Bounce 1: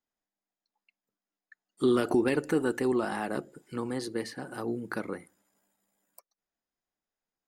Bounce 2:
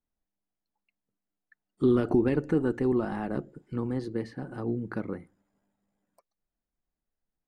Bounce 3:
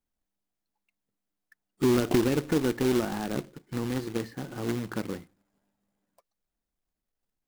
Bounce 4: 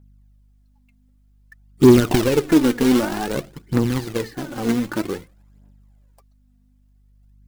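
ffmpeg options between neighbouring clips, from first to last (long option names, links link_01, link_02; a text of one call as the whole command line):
ffmpeg -i in.wav -af "aemphasis=mode=reproduction:type=riaa,volume=-3.5dB" out.wav
ffmpeg -i in.wav -af "acrusher=bits=2:mode=log:mix=0:aa=0.000001" out.wav
ffmpeg -i in.wav -af "aeval=exprs='val(0)+0.000708*(sin(2*PI*50*n/s)+sin(2*PI*2*50*n/s)/2+sin(2*PI*3*50*n/s)/3+sin(2*PI*4*50*n/s)/4+sin(2*PI*5*50*n/s)/5)':channel_layout=same,aphaser=in_gain=1:out_gain=1:delay=4.4:decay=0.55:speed=0.53:type=triangular,volume=7dB" out.wav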